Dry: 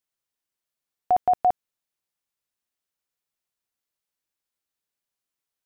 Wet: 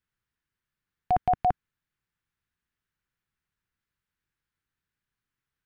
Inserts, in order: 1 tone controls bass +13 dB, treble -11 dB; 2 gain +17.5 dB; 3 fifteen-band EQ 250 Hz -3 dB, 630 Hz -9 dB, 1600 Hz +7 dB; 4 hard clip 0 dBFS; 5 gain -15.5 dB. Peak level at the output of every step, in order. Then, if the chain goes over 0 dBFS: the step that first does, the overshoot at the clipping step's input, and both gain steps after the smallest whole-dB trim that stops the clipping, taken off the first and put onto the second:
-10.5, +7.0, +5.0, 0.0, -15.5 dBFS; step 2, 5.0 dB; step 2 +12.5 dB, step 5 -10.5 dB

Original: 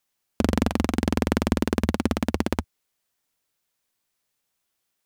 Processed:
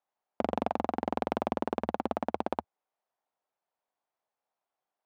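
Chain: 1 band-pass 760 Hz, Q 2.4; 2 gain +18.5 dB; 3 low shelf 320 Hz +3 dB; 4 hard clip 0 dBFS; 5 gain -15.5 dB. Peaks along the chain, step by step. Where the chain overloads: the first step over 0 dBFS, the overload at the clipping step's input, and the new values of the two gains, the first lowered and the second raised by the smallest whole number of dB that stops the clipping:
-14.5, +4.0, +4.5, 0.0, -15.5 dBFS; step 2, 4.5 dB; step 2 +13.5 dB, step 5 -10.5 dB

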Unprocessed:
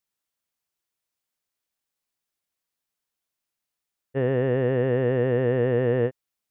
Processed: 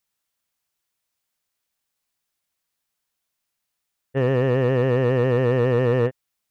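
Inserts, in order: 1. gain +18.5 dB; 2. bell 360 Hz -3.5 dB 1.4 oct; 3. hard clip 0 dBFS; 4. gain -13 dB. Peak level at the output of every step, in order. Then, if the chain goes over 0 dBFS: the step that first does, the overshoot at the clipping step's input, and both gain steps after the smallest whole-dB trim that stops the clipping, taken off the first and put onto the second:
+6.5, +4.0, 0.0, -13.0 dBFS; step 1, 4.0 dB; step 1 +14.5 dB, step 4 -9 dB

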